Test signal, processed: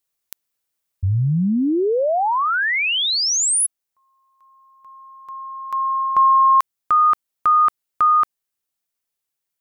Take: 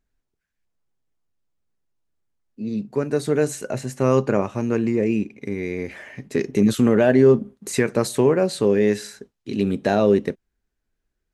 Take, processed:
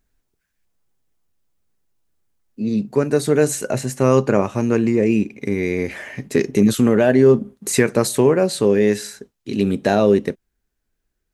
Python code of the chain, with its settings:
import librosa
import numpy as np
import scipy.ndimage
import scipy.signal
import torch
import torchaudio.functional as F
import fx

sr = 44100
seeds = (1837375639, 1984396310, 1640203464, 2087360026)

p1 = fx.high_shelf(x, sr, hz=7900.0, db=7.0)
p2 = fx.rider(p1, sr, range_db=5, speed_s=0.5)
p3 = p1 + F.gain(torch.from_numpy(p2), -0.5).numpy()
y = F.gain(torch.from_numpy(p3), -2.5).numpy()